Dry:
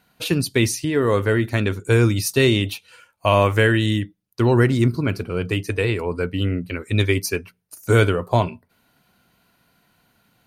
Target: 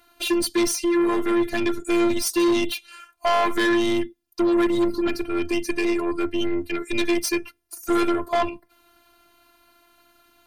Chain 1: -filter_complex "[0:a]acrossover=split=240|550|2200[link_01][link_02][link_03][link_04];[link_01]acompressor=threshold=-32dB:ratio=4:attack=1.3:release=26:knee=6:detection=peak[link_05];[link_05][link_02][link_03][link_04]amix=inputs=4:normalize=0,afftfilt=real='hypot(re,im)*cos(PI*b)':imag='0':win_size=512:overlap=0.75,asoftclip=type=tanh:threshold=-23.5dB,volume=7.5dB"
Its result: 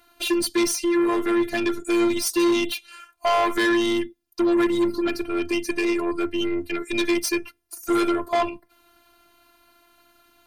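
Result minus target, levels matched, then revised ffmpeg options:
downward compressor: peak gain reduction +8 dB
-filter_complex "[0:a]acrossover=split=240|550|2200[link_01][link_02][link_03][link_04];[link_01]acompressor=threshold=-21dB:ratio=4:attack=1.3:release=26:knee=6:detection=peak[link_05];[link_05][link_02][link_03][link_04]amix=inputs=4:normalize=0,afftfilt=real='hypot(re,im)*cos(PI*b)':imag='0':win_size=512:overlap=0.75,asoftclip=type=tanh:threshold=-23.5dB,volume=7.5dB"

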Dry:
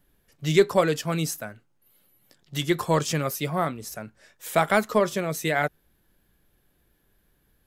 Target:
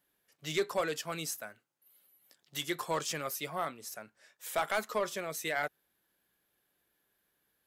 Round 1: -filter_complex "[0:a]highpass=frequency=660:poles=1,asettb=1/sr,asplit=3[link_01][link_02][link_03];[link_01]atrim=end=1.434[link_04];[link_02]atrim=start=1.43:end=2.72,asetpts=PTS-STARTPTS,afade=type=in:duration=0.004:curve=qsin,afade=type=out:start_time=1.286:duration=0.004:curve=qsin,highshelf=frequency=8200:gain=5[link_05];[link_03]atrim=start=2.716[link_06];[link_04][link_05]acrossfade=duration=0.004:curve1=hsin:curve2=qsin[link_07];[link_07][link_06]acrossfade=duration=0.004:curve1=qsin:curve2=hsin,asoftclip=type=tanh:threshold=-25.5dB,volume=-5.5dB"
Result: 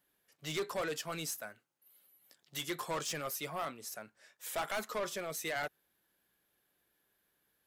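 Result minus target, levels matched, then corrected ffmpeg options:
soft clipping: distortion +8 dB
-filter_complex "[0:a]highpass=frequency=660:poles=1,asettb=1/sr,asplit=3[link_01][link_02][link_03];[link_01]atrim=end=1.434[link_04];[link_02]atrim=start=1.43:end=2.72,asetpts=PTS-STARTPTS,afade=type=in:duration=0.004:curve=qsin,afade=type=out:start_time=1.286:duration=0.004:curve=qsin,highshelf=frequency=8200:gain=5[link_05];[link_03]atrim=start=2.716[link_06];[link_04][link_05]acrossfade=duration=0.004:curve1=hsin:curve2=qsin[link_07];[link_07][link_06]acrossfade=duration=0.004:curve1=qsin:curve2=hsin,asoftclip=type=tanh:threshold=-16.5dB,volume=-5.5dB"

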